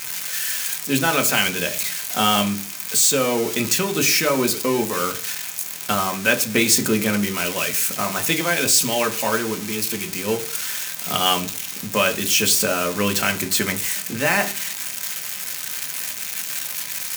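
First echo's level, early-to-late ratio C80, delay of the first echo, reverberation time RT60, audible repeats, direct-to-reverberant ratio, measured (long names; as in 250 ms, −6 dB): no echo audible, 20.0 dB, no echo audible, 0.45 s, no echo audible, 4.5 dB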